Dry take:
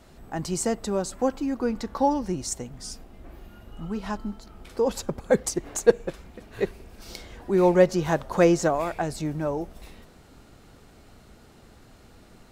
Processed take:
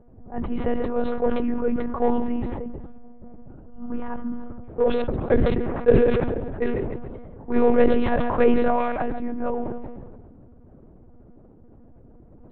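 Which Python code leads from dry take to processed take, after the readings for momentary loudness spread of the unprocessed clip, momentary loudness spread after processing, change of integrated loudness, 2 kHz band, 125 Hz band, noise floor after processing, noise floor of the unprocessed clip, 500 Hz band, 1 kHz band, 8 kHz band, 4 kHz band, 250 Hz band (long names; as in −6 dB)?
19 LU, 17 LU, +1.5 dB, +0.5 dB, +1.5 dB, −49 dBFS, −53 dBFS, +2.0 dB, +1.5 dB, below −40 dB, −5.0 dB, +3.0 dB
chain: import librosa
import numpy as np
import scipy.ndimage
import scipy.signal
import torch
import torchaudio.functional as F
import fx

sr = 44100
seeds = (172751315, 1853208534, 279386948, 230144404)

p1 = fx.hum_notches(x, sr, base_hz=50, count=8)
p2 = fx.env_lowpass(p1, sr, base_hz=460.0, full_db=-18.5)
p3 = fx.dynamic_eq(p2, sr, hz=970.0, q=1.2, threshold_db=-38.0, ratio=4.0, max_db=-3)
p4 = np.clip(p3, -10.0 ** (-19.0 / 20.0), 10.0 ** (-19.0 / 20.0))
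p5 = p3 + (p4 * librosa.db_to_amplitude(-5.0))
p6 = fx.air_absorb(p5, sr, metres=300.0)
p7 = p6 + fx.echo_feedback(p6, sr, ms=145, feedback_pct=46, wet_db=-17, dry=0)
p8 = fx.lpc_monotone(p7, sr, seeds[0], pitch_hz=240.0, order=10)
y = fx.sustainer(p8, sr, db_per_s=30.0)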